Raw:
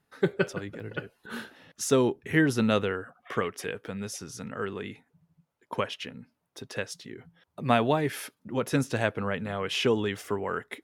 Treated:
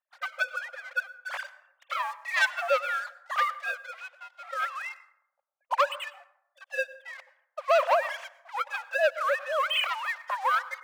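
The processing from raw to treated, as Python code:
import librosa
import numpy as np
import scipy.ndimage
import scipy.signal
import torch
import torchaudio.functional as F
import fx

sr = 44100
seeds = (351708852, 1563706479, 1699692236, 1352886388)

y = fx.sine_speech(x, sr)
y = fx.peak_eq(y, sr, hz=1100.0, db=4.0, octaves=0.67)
y = fx.leveller(y, sr, passes=3)
y = fx.brickwall_highpass(y, sr, low_hz=520.0)
y = fx.rev_plate(y, sr, seeds[0], rt60_s=0.76, hf_ratio=0.45, predelay_ms=85, drr_db=17.0)
y = y * 10.0 ** (-4.0 / 20.0)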